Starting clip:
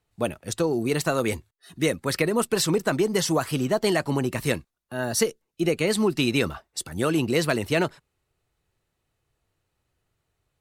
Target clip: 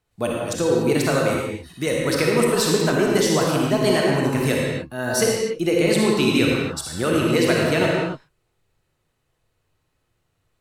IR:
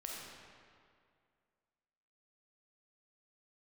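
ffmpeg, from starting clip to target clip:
-filter_complex "[0:a]asettb=1/sr,asplit=3[a][b][c];[a]atrim=end=1.184[d];[b]atrim=start=1.18:end=1.87,asetpts=PTS-STARTPTS,afade=t=in:d=0.004:c=qsin,afade=t=out:st=0.686:d=0.004:c=qsin,acompressor=threshold=-25dB:ratio=2[e];[c]atrim=start=1.866[f];[d][e]acrossfade=d=0.004:c1=hsin:c2=qsin[g];[g][f]acrossfade=d=0.004:c1=qsin:c2=hsin[h];[1:a]atrim=start_sample=2205,afade=t=out:st=0.29:d=0.01,atrim=end_sample=13230,asetrate=35280,aresample=44100[i];[h][i]afir=irnorm=-1:irlink=0,volume=5dB"

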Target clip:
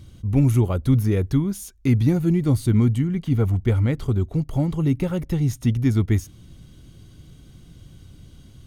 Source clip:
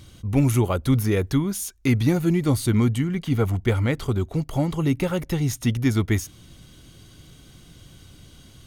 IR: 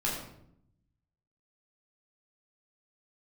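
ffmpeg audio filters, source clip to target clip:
-af "lowshelf=f=380:g=10.5,volume=-6.5dB"

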